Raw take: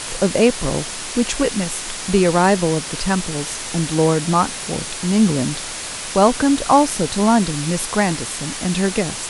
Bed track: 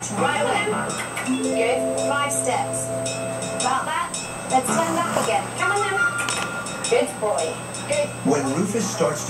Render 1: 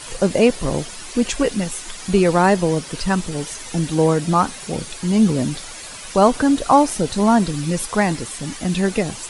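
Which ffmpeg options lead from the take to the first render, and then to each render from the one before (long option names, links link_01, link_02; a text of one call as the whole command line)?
ffmpeg -i in.wav -af "afftdn=noise_reduction=10:noise_floor=-29" out.wav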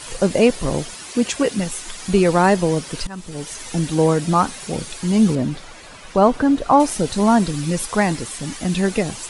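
ffmpeg -i in.wav -filter_complex "[0:a]asettb=1/sr,asplit=3[link_01][link_02][link_03];[link_01]atrim=end=0.944[link_04];[link_02]atrim=start=0.94:end=1.59,asetpts=PTS-STARTPTS,afade=type=in:duration=0.004:curve=qsin,afade=type=out:start_time=0.646:duration=0.004:curve=qsin,highpass=84[link_05];[link_03]atrim=start=1.586[link_06];[link_04][link_05]acrossfade=duration=0.004:curve1=hsin:curve2=qsin[link_07];[link_07][link_06]acrossfade=duration=0.004:curve1=qsin:curve2=hsin,asettb=1/sr,asplit=3[link_08][link_09][link_10];[link_08]atrim=end=5.354[link_11];[link_09]atrim=start=5.35:end=6.8,asetpts=PTS-STARTPTS,afade=type=in:duration=0.004:curve=qsin,afade=type=out:start_time=1.446:duration=0.004:curve=qsin,lowpass=frequency=2000:poles=1[link_12];[link_10]atrim=start=6.796[link_13];[link_11][link_12]acrossfade=duration=0.004:curve1=hsin:curve2=qsin[link_14];[link_14][link_13]acrossfade=duration=0.004:curve1=qsin:curve2=hsin,asplit=2[link_15][link_16];[link_15]atrim=end=3.07,asetpts=PTS-STARTPTS,afade=type=out:start_time=3.066:duration=0.004:curve=hsin:silence=0.0891251[link_17];[link_16]atrim=start=3.07,asetpts=PTS-STARTPTS,afade=type=in:duration=0.54:silence=0.0891251[link_18];[link_17][link_18]concat=n=2:v=0:a=1" out.wav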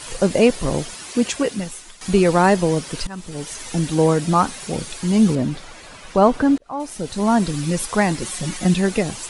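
ffmpeg -i in.wav -filter_complex "[0:a]asettb=1/sr,asplit=3[link_01][link_02][link_03];[link_01]atrim=end=8.214[link_04];[link_02]atrim=start=8.21:end=8.74,asetpts=PTS-STARTPTS,afade=type=in:duration=0.004:curve=qsin,afade=type=out:start_time=0.526:duration=0.004:curve=qsin,aecho=1:1:5.5:0.82,atrim=end_sample=23373[link_05];[link_03]atrim=start=8.736[link_06];[link_04][link_05]acrossfade=duration=0.004:curve1=hsin:curve2=qsin[link_07];[link_07][link_06]acrossfade=duration=0.004:curve1=qsin:curve2=hsin,asplit=3[link_08][link_09][link_10];[link_08]atrim=end=2.01,asetpts=PTS-STARTPTS,afade=type=out:start_time=1.24:duration=0.77:silence=0.223872[link_11];[link_09]atrim=start=2.01:end=6.58,asetpts=PTS-STARTPTS,afade=type=in:duration=0.004:curve=hsin:silence=0.223872,afade=type=out:start_time=4.566:duration=0.004:curve=hsin[link_12];[link_10]atrim=start=6.58,asetpts=PTS-STARTPTS,afade=type=in:duration=0.95[link_13];[link_11][link_12][link_13]concat=n=3:v=0:a=1" out.wav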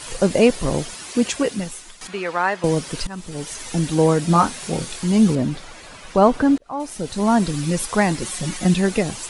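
ffmpeg -i in.wav -filter_complex "[0:a]asettb=1/sr,asplit=3[link_01][link_02][link_03];[link_01]atrim=end=2.074[link_04];[link_02]atrim=start=2.07:end=2.64,asetpts=PTS-STARTPTS,afade=type=in:duration=0.004:curve=qsin,afade=type=out:start_time=0.566:duration=0.004:curve=qsin,bandpass=frequency=1600:width_type=q:width=1[link_05];[link_03]atrim=start=2.636[link_06];[link_04][link_05]acrossfade=duration=0.004:curve1=hsin:curve2=qsin[link_07];[link_07][link_06]acrossfade=duration=0.004:curve1=qsin:curve2=hsin,asettb=1/sr,asplit=3[link_08][link_09][link_10];[link_08]atrim=end=4.274[link_11];[link_09]atrim=start=4.27:end=5.04,asetpts=PTS-STARTPTS,afade=type=in:duration=0.004:curve=qsin,afade=type=out:start_time=0.766:duration=0.004:curve=qsin,asplit=2[link_12][link_13];[link_13]adelay=24,volume=-6dB[link_14];[link_12][link_14]amix=inputs=2:normalize=0,atrim=end_sample=33957[link_15];[link_10]atrim=start=5.036[link_16];[link_11][link_15]acrossfade=duration=0.004:curve1=hsin:curve2=qsin[link_17];[link_17][link_16]acrossfade=duration=0.004:curve1=qsin:curve2=hsin" out.wav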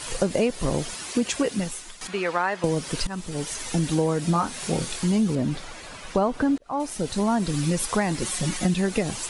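ffmpeg -i in.wav -af "acompressor=threshold=-19dB:ratio=6" out.wav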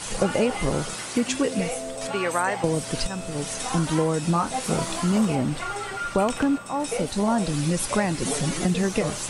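ffmpeg -i in.wav -i bed.wav -filter_complex "[1:a]volume=-10.5dB[link_01];[0:a][link_01]amix=inputs=2:normalize=0" out.wav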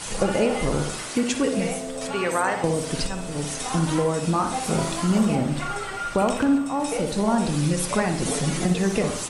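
ffmpeg -i in.wav -filter_complex "[0:a]asplit=2[link_01][link_02];[link_02]adelay=61,lowpass=frequency=2000:poles=1,volume=-6dB,asplit=2[link_03][link_04];[link_04]adelay=61,lowpass=frequency=2000:poles=1,volume=0.53,asplit=2[link_05][link_06];[link_06]adelay=61,lowpass=frequency=2000:poles=1,volume=0.53,asplit=2[link_07][link_08];[link_08]adelay=61,lowpass=frequency=2000:poles=1,volume=0.53,asplit=2[link_09][link_10];[link_10]adelay=61,lowpass=frequency=2000:poles=1,volume=0.53,asplit=2[link_11][link_12];[link_12]adelay=61,lowpass=frequency=2000:poles=1,volume=0.53,asplit=2[link_13][link_14];[link_14]adelay=61,lowpass=frequency=2000:poles=1,volume=0.53[link_15];[link_01][link_03][link_05][link_07][link_09][link_11][link_13][link_15]amix=inputs=8:normalize=0" out.wav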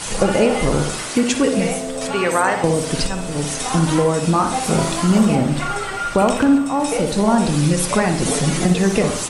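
ffmpeg -i in.wav -af "volume=6dB,alimiter=limit=-3dB:level=0:latency=1" out.wav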